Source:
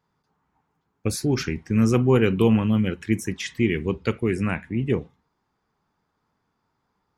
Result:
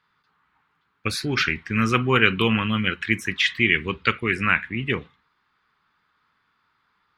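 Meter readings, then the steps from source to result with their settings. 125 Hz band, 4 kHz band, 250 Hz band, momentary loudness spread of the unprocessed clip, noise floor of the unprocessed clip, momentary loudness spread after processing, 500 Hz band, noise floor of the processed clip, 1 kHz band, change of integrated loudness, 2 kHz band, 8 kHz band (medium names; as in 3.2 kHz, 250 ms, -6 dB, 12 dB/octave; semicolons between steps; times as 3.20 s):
-4.0 dB, +10.5 dB, -4.0 dB, 9 LU, -75 dBFS, 9 LU, -4.0 dB, -70 dBFS, +7.5 dB, +1.0 dB, +12.0 dB, -3.0 dB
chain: high-order bell 2.2 kHz +16 dB 2.3 oct; trim -4 dB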